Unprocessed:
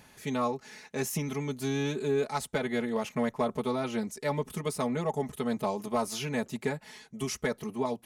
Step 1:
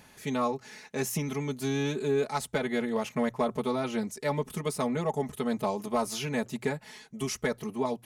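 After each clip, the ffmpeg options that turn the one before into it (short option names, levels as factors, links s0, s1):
-af "bandreject=f=60:t=h:w=6,bandreject=f=120:t=h:w=6,volume=1.12"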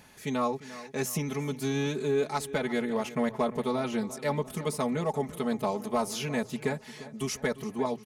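-filter_complex "[0:a]asplit=2[s0][s1];[s1]adelay=348,lowpass=f=4800:p=1,volume=0.158,asplit=2[s2][s3];[s3]adelay=348,lowpass=f=4800:p=1,volume=0.55,asplit=2[s4][s5];[s5]adelay=348,lowpass=f=4800:p=1,volume=0.55,asplit=2[s6][s7];[s7]adelay=348,lowpass=f=4800:p=1,volume=0.55,asplit=2[s8][s9];[s9]adelay=348,lowpass=f=4800:p=1,volume=0.55[s10];[s0][s2][s4][s6][s8][s10]amix=inputs=6:normalize=0"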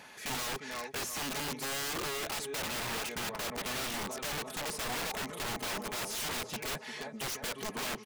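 -filter_complex "[0:a]asplit=2[s0][s1];[s1]highpass=f=720:p=1,volume=12.6,asoftclip=type=tanh:threshold=0.168[s2];[s0][s2]amix=inputs=2:normalize=0,lowpass=f=3700:p=1,volume=0.501,aeval=exprs='(mod(14.1*val(0)+1,2)-1)/14.1':c=same,volume=0.355"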